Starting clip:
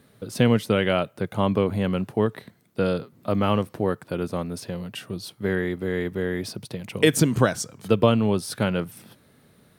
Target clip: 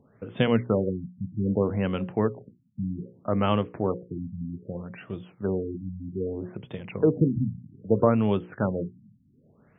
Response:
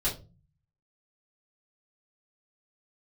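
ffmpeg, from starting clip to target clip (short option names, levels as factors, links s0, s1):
-af "bandreject=f=60:t=h:w=6,bandreject=f=120:t=h:w=6,bandreject=f=180:t=h:w=6,bandreject=f=240:t=h:w=6,bandreject=f=300:t=h:w=6,bandreject=f=360:t=h:w=6,bandreject=f=420:t=h:w=6,bandreject=f=480:t=h:w=6,bandreject=f=540:t=h:w=6,afftfilt=real='re*lt(b*sr/1024,250*pow(3700/250,0.5+0.5*sin(2*PI*0.63*pts/sr)))':imag='im*lt(b*sr/1024,250*pow(3700/250,0.5+0.5*sin(2*PI*0.63*pts/sr)))':win_size=1024:overlap=0.75,volume=0.841"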